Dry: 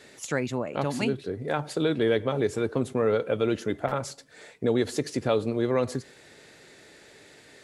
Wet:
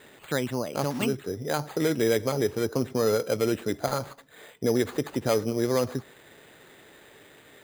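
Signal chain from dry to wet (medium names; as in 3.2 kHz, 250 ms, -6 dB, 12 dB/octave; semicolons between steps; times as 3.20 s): resampled via 11.025 kHz; sample-and-hold 8×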